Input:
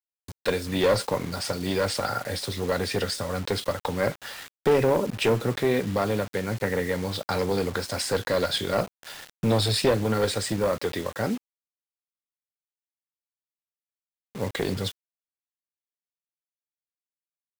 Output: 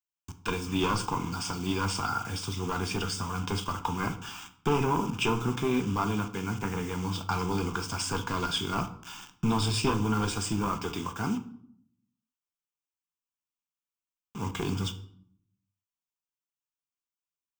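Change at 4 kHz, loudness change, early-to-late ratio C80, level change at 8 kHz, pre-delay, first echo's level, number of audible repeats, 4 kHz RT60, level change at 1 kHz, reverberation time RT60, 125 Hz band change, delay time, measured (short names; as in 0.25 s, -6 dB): -4.0 dB, -4.0 dB, 17.0 dB, -2.0 dB, 3 ms, none, none, 0.45 s, +0.5 dB, 0.65 s, -1.5 dB, none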